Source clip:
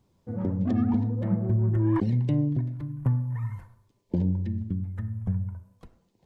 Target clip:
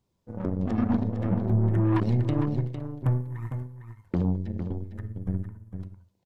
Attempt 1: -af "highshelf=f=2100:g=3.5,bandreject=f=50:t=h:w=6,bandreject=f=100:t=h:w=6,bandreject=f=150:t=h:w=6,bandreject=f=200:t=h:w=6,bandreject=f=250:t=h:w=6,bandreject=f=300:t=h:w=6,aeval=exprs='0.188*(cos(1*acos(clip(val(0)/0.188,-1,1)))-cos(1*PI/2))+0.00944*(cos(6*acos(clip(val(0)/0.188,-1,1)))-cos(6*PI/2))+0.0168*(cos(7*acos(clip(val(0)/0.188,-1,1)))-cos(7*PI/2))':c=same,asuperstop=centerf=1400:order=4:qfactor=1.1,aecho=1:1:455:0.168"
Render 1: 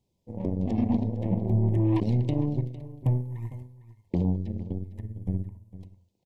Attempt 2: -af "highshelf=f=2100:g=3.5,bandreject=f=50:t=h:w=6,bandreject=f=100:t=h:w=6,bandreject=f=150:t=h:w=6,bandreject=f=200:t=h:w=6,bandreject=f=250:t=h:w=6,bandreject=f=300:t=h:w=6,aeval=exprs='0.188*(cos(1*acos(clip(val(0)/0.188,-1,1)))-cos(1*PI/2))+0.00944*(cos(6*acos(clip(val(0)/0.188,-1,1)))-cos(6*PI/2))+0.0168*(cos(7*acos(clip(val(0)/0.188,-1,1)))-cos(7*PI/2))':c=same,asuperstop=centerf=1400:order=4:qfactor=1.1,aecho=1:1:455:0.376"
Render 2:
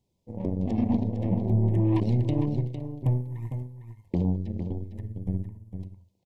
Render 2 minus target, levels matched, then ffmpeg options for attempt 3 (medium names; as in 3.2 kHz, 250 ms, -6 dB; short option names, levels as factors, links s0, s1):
1 kHz band -3.5 dB
-af "highshelf=f=2100:g=3.5,bandreject=f=50:t=h:w=6,bandreject=f=100:t=h:w=6,bandreject=f=150:t=h:w=6,bandreject=f=200:t=h:w=6,bandreject=f=250:t=h:w=6,bandreject=f=300:t=h:w=6,aeval=exprs='0.188*(cos(1*acos(clip(val(0)/0.188,-1,1)))-cos(1*PI/2))+0.00944*(cos(6*acos(clip(val(0)/0.188,-1,1)))-cos(6*PI/2))+0.0168*(cos(7*acos(clip(val(0)/0.188,-1,1)))-cos(7*PI/2))':c=same,aecho=1:1:455:0.376"